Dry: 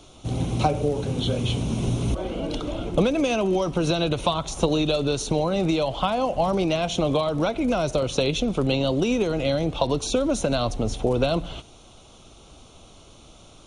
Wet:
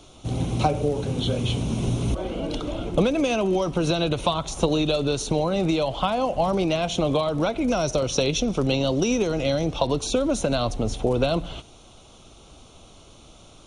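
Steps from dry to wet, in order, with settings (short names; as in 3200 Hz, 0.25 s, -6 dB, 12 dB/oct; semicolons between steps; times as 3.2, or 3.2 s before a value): 7.67–9.8 bell 5700 Hz +10.5 dB 0.25 oct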